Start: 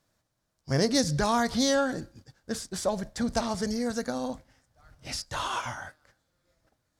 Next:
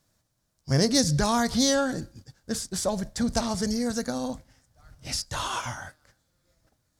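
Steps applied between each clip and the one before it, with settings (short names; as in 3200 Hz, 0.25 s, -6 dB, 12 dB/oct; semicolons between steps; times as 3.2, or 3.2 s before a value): tone controls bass +5 dB, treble +6 dB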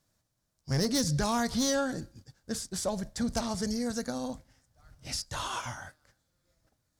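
hard clip -18 dBFS, distortion -16 dB; gain -4.5 dB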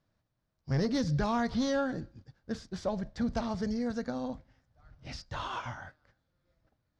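air absorption 230 m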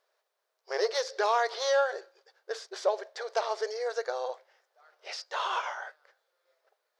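brick-wall FIR high-pass 370 Hz; gain +6.5 dB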